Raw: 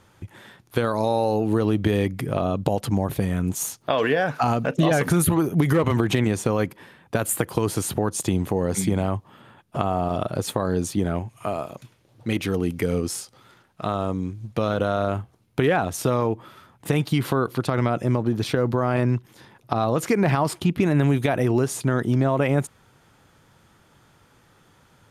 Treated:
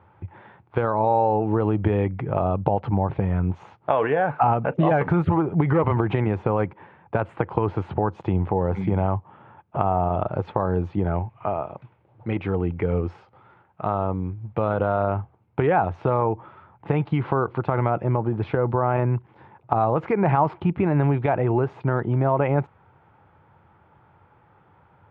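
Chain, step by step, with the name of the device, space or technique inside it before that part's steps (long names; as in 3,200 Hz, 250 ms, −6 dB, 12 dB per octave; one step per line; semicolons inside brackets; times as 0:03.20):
bass cabinet (loudspeaker in its box 62–2,200 Hz, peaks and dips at 87 Hz +6 dB, 250 Hz −7 dB, 860 Hz +8 dB, 1,800 Hz −5 dB)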